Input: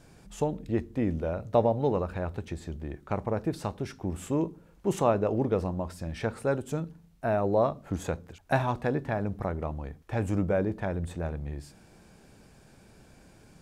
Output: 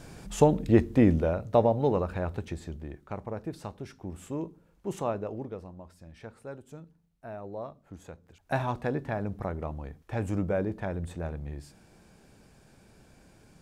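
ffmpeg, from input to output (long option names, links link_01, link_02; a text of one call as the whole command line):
ffmpeg -i in.wav -af "volume=20dB,afade=type=out:start_time=1:duration=0.41:silence=0.446684,afade=type=out:start_time=2.39:duration=0.73:silence=0.421697,afade=type=out:start_time=5.11:duration=0.5:silence=0.421697,afade=type=in:start_time=8.21:duration=0.43:silence=0.251189" out.wav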